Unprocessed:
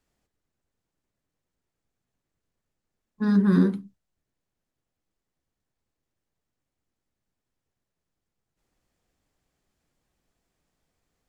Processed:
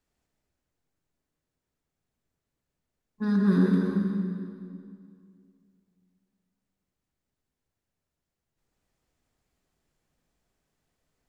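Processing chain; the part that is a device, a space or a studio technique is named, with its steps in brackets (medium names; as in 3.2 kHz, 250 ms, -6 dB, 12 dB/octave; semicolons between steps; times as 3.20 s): stairwell (reverberation RT60 2.3 s, pre-delay 99 ms, DRR -0.5 dB); trim -4 dB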